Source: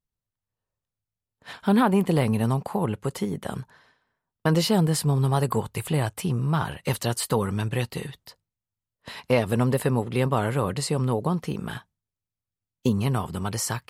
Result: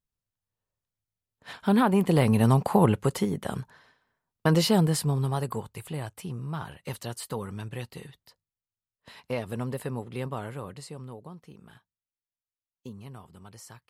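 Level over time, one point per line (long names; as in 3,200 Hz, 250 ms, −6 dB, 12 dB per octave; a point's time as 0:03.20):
0:01.92 −2 dB
0:02.80 +6 dB
0:03.38 −0.5 dB
0:04.76 −0.5 dB
0:05.79 −10 dB
0:10.27 −10 dB
0:11.34 −19.5 dB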